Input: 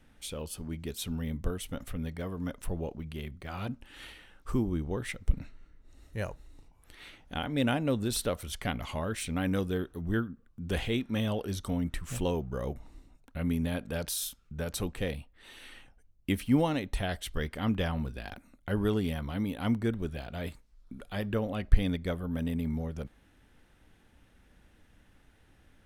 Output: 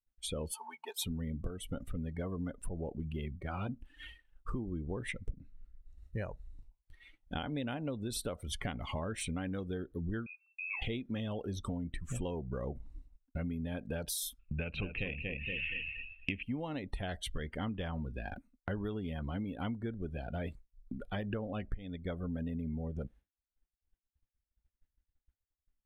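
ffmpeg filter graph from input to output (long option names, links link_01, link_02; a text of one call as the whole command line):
ffmpeg -i in.wav -filter_complex "[0:a]asettb=1/sr,asplit=3[link_01][link_02][link_03];[link_01]atrim=end=0.524[link_04];[link_02]atrim=start=0.52:end=1.04,asetpts=PTS-STARTPTS,afade=type=in:duration=0.004:curve=qsin,afade=type=out:start_time=0.516:duration=0.004:curve=qsin,highpass=frequency=890:width_type=q:width=5.6,bandreject=frequency=2000:width=22,aecho=1:1:4.5:0.45,atrim=end_sample=22932[link_05];[link_03]atrim=start=1.036[link_06];[link_04][link_05]acrossfade=duration=0.004:curve1=hsin:curve2=qsin[link_07];[link_07][link_06]acrossfade=duration=0.004:curve1=qsin:curve2=hsin,asettb=1/sr,asplit=3[link_08][link_09][link_10];[link_08]atrim=end=10.264[link_11];[link_09]atrim=start=10.26:end=10.82,asetpts=PTS-STARTPTS,afade=type=in:duration=0.004:curve=qsin,afade=type=out:start_time=0.556:duration=0.004:curve=qsin,acompressor=threshold=-43dB:ratio=2.5:attack=3.2:release=140:knee=1:detection=peak,lowpass=frequency=2300:width_type=q:width=0.5098,lowpass=frequency=2300:width_type=q:width=0.6013,lowpass=frequency=2300:width_type=q:width=0.9,lowpass=frequency=2300:width_type=q:width=2.563,afreqshift=-2700[link_12];[link_10]atrim=start=10.816[link_13];[link_11][link_12]acrossfade=duration=0.004:curve1=hsin:curve2=qsin[link_14];[link_14][link_13]acrossfade=duration=0.004:curve1=qsin:curve2=hsin,asettb=1/sr,asplit=3[link_15][link_16][link_17];[link_15]atrim=end=14.394[link_18];[link_16]atrim=start=14.39:end=16.43,asetpts=PTS-STARTPTS,afade=type=in:duration=0.004:curve=qsin,afade=type=out:start_time=2.036:duration=0.004:curve=qsin,lowpass=frequency=2600:width_type=q:width=13,lowshelf=frequency=360:gain=5.5,aecho=1:1:233|466|699|932:0.422|0.156|0.0577|0.0214,atrim=end_sample=89964[link_19];[link_17]atrim=start=16.426[link_20];[link_18][link_19]acrossfade=duration=0.004:curve1=hsin:curve2=qsin[link_21];[link_21][link_20]acrossfade=duration=0.004:curve1=qsin:curve2=hsin,afftdn=noise_reduction=20:noise_floor=-43,agate=range=-33dB:threshold=-52dB:ratio=3:detection=peak,acompressor=threshold=-37dB:ratio=16,volume=3.5dB" out.wav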